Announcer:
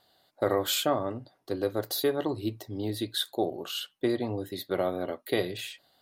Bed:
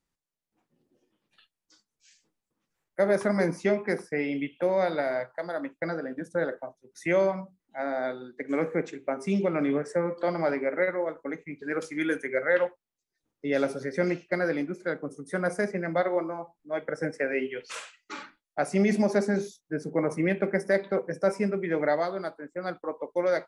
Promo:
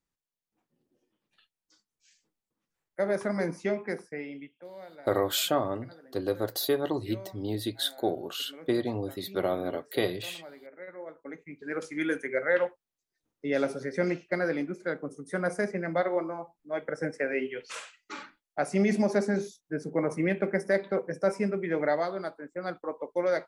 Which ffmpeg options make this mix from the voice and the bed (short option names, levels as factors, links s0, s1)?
-filter_complex "[0:a]adelay=4650,volume=1[s0];[1:a]volume=5.31,afade=t=out:st=3.83:d=0.79:silence=0.158489,afade=t=in:st=10.79:d=1.22:silence=0.112202[s1];[s0][s1]amix=inputs=2:normalize=0"